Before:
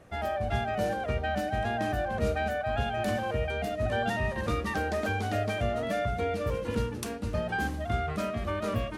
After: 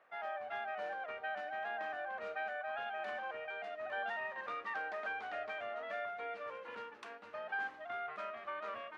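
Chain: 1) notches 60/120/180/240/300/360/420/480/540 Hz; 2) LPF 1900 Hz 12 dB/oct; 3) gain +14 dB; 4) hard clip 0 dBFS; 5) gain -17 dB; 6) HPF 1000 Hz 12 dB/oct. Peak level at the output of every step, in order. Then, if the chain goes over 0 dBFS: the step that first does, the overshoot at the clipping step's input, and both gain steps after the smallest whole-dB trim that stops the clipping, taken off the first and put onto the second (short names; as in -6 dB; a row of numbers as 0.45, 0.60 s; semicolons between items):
-17.0, -18.0, -4.0, -4.0, -21.0, -29.0 dBFS; no overload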